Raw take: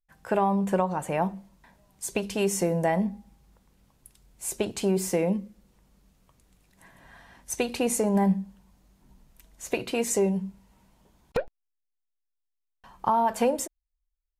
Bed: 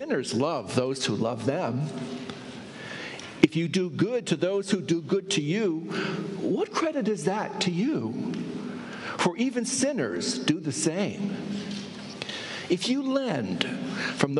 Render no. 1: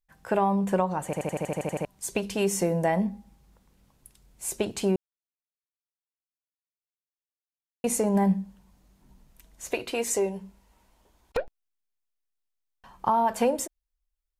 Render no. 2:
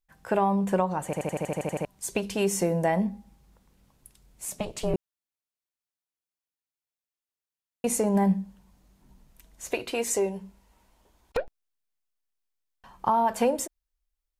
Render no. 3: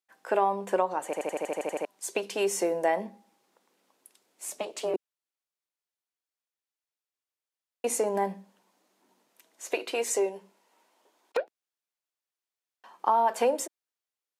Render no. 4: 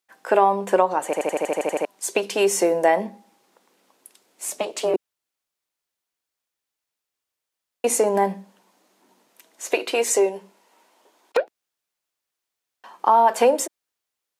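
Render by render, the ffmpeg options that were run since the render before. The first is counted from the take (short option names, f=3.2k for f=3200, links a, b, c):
-filter_complex "[0:a]asettb=1/sr,asplit=3[a][b][c];[a]atrim=end=9.724[d];[b]atrim=start=9.72:end=11.4,asetpts=PTS-STARTPTS,afade=t=in:d=0.004:c=qsin,afade=t=out:st=1.676:d=0.004:c=qsin,equalizer=f=160:w=1.5:g=-13.5[e];[c]atrim=start=11.396[f];[d][e]acrossfade=d=0.004:c1=hsin:c2=qsin[g];[g][f]acrossfade=d=0.004:c1=qsin:c2=hsin,asplit=13[h][i][j][k][l][m][n][o][p][q][r][s][t];[h]atrim=end=1.132[u];[i]atrim=start=1.048:end=1.132[v];[j]atrim=start=1.048:end=1.132[w];[k]atrim=start=1.048:end=1.132[x];[l]atrim=start=1.048:end=1.132[y];[m]atrim=start=1.048:end=1.132[z];[n]atrim=start=1.048:end=1.132[aa];[o]atrim=start=1.048:end=1.132[ab];[p]atrim=start=1.048:end=1.132[ac];[q]atrim=start=1.048:end=1.132[ad];[r]atrim=start=1.848:end=4.96,asetpts=PTS-STARTPTS,afade=t=out:st=3.108:d=0.004:c=hsin[ae];[s]atrim=start=4.96:end=7.84,asetpts=PTS-STARTPTS,volume=0[af];[t]atrim=start=7.84,asetpts=PTS-STARTPTS,afade=t=in:d=0.004:c=hsin[ag];[u][v]acrossfade=d=0.004:c1=hsin:c2=hsin[ah];[ah][w]acrossfade=d=0.004:c1=hsin:c2=hsin[ai];[ai][x]acrossfade=d=0.004:c1=hsin:c2=hsin[aj];[aj][y]acrossfade=d=0.004:c1=hsin:c2=hsin[ak];[ak][z]acrossfade=d=0.004:c1=hsin:c2=hsin[al];[al][aa]acrossfade=d=0.004:c1=hsin:c2=hsin[am];[am][ab]acrossfade=d=0.004:c1=hsin:c2=hsin[an];[an][ac]acrossfade=d=0.004:c1=hsin:c2=hsin[ao];[ao][ad]acrossfade=d=0.004:c1=hsin:c2=hsin[ap];[ae][af][ag]concat=n=3:v=0:a=1[aq];[ap][aq]acrossfade=d=0.004:c1=hsin:c2=hsin"
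-filter_complex "[0:a]asettb=1/sr,asplit=3[a][b][c];[a]atrim=end=4.454[d];[b]atrim=start=4.45:end=4.94,asetpts=PTS-STARTPTS,afade=t=in:d=0.004:c=qsin,afade=t=out:st=0.486:d=0.004:c=qsin,aeval=exprs='val(0)*sin(2*PI*210*n/s)':c=same[e];[c]atrim=start=4.936[f];[d][e]acrossfade=d=0.004:c1=hsin:c2=qsin[g];[g][f]acrossfade=d=0.004:c1=qsin:c2=hsin"
-af "highpass=f=310:w=0.5412,highpass=f=310:w=1.3066,highshelf=f=11k:g=-6.5"
-af "volume=8dB,alimiter=limit=-3dB:level=0:latency=1"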